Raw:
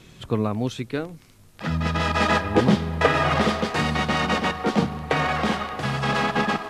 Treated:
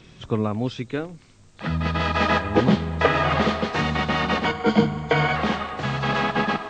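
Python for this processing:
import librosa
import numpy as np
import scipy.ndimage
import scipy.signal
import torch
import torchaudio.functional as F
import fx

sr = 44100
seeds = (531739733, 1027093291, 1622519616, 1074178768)

y = fx.freq_compress(x, sr, knee_hz=3400.0, ratio=1.5)
y = fx.ripple_eq(y, sr, per_octave=1.8, db=13, at=(4.45, 5.35))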